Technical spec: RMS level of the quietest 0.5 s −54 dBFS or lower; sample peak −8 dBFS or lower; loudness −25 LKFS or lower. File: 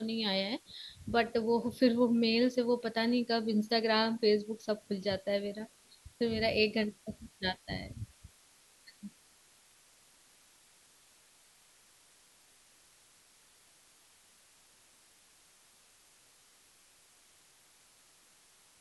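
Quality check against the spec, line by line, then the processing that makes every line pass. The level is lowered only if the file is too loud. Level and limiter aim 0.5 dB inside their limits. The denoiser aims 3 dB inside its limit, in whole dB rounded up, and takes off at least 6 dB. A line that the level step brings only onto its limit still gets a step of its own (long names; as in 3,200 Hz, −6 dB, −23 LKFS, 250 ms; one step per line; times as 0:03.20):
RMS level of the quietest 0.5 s −64 dBFS: in spec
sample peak −14.0 dBFS: in spec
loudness −31.5 LKFS: in spec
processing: no processing needed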